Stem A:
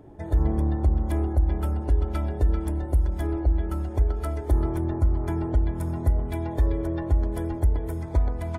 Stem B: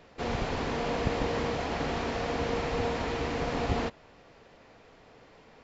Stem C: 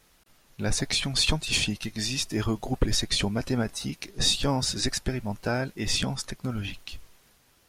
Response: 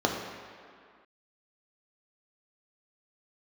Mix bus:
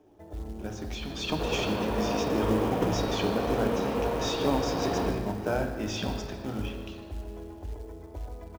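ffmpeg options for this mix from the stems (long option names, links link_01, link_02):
-filter_complex "[0:a]acrossover=split=190|3000[link_01][link_02][link_03];[link_02]acompressor=threshold=-34dB:ratio=3[link_04];[link_01][link_04][link_03]amix=inputs=3:normalize=0,volume=-15.5dB,asplit=3[link_05][link_06][link_07];[link_06]volume=-13.5dB[link_08];[link_07]volume=-10dB[link_09];[1:a]bandreject=frequency=740:width=12,adelay=1200,volume=-11dB,asplit=2[link_10][link_11];[link_11]volume=-4dB[link_12];[2:a]acrusher=bits=3:mode=log:mix=0:aa=0.000001,volume=-11dB,afade=type=in:start_time=0.83:duration=0.56:silence=0.375837,asplit=3[link_13][link_14][link_15];[link_14]volume=-6.5dB[link_16];[link_15]volume=-13.5dB[link_17];[3:a]atrim=start_sample=2205[link_18];[link_08][link_12][link_16]amix=inputs=3:normalize=0[link_19];[link_19][link_18]afir=irnorm=-1:irlink=0[link_20];[link_09][link_17]amix=inputs=2:normalize=0,aecho=0:1:154|308|462|616|770|924|1078:1|0.5|0.25|0.125|0.0625|0.0312|0.0156[link_21];[link_05][link_10][link_13][link_20][link_21]amix=inputs=5:normalize=0,lowpass=frequency=5900:width=0.5412,lowpass=frequency=5900:width=1.3066,acrusher=bits=6:mode=log:mix=0:aa=0.000001"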